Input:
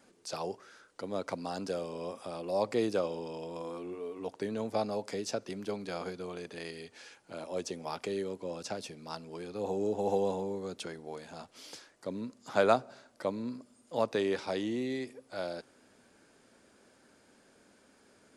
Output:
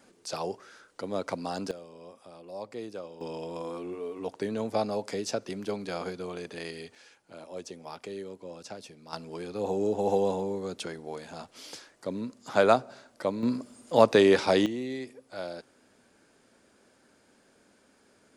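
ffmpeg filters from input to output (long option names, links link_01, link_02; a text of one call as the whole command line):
ffmpeg -i in.wav -af "asetnsamples=nb_out_samples=441:pad=0,asendcmd='1.71 volume volume -9dB;3.21 volume volume 3.5dB;6.95 volume volume -4dB;9.13 volume volume 4dB;13.43 volume volume 11dB;14.66 volume volume 0dB',volume=3.5dB" out.wav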